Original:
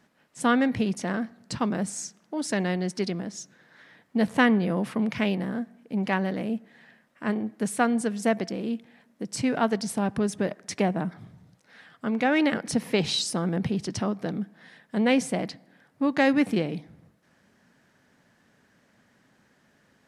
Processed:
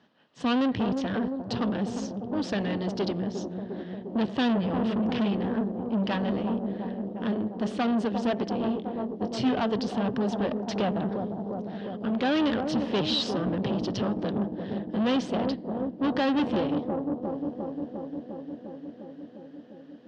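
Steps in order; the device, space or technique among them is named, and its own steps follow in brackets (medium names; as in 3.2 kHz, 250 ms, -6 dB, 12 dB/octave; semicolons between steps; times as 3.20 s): analogue delay pedal into a guitar amplifier (bucket-brigade echo 352 ms, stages 2048, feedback 78%, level -9 dB; valve stage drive 28 dB, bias 0.8; cabinet simulation 94–4600 Hz, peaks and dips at 160 Hz -4 dB, 1.4 kHz -3 dB, 2.2 kHz -9 dB, 3.1 kHz +6 dB); 8.61–9.56 s: doubling 23 ms -6.5 dB; trim +6.5 dB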